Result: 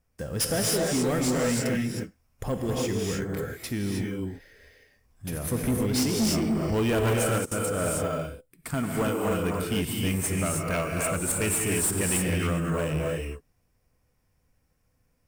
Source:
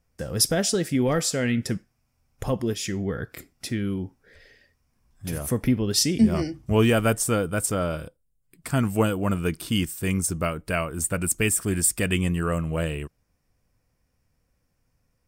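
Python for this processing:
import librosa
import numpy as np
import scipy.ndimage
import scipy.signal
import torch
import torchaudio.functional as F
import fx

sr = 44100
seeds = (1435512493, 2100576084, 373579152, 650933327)

p1 = fx.highpass(x, sr, hz=200.0, slope=6, at=(8.74, 9.31))
p2 = fx.rev_gated(p1, sr, seeds[0], gate_ms=340, shape='rising', drr_db=-1.0)
p3 = fx.sample_hold(p2, sr, seeds[1], rate_hz=8100.0, jitter_pct=0)
p4 = p2 + (p3 * librosa.db_to_amplitude(-9.5))
p5 = fx.level_steps(p4, sr, step_db=22, at=(7.38, 7.78))
p6 = fx.high_shelf(p5, sr, hz=8700.0, db=5.0)
p7 = 10.0 ** (-15.5 / 20.0) * np.tanh(p6 / 10.0 ** (-15.5 / 20.0))
y = p7 * librosa.db_to_amplitude(-4.5)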